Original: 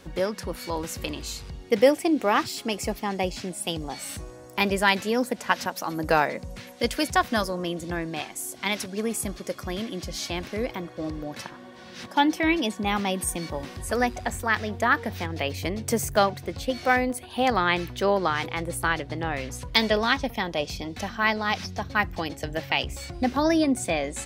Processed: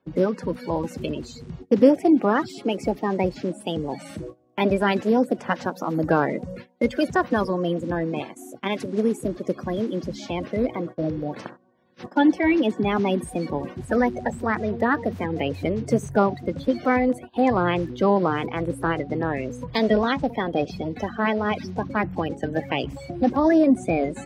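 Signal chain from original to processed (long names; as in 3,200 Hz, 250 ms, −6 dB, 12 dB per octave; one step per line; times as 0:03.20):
spectral magnitudes quantised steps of 30 dB
noise gate −40 dBFS, range −23 dB
high-pass filter 240 Hz 12 dB per octave
spectral tilt −4.5 dB per octave
in parallel at −1 dB: brickwall limiter −14 dBFS, peak gain reduction 12 dB
on the sum: level −3.5 dB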